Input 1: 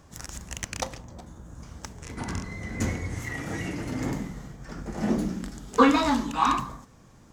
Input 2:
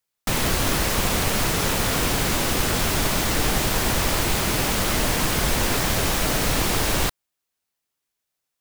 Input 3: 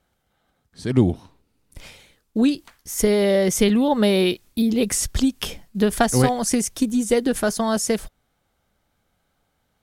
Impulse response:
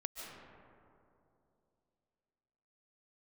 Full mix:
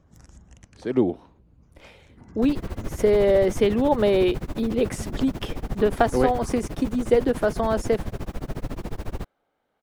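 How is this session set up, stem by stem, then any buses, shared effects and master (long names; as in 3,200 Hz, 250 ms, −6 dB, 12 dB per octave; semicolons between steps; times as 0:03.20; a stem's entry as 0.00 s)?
−12.0 dB, 0.00 s, no send, gate on every frequency bin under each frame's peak −30 dB strong; speech leveller within 3 dB; automatic ducking −9 dB, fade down 0.80 s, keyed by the third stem
−7.5 dB, 2.15 s, no send, high-shelf EQ 2,700 Hz −11.5 dB; amplitude tremolo 14 Hz, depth 98%
+1.0 dB, 0.00 s, no send, three-way crossover with the lows and the highs turned down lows −23 dB, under 320 Hz, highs −12 dB, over 3,500 Hz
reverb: not used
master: tilt shelving filter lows +6 dB, about 640 Hz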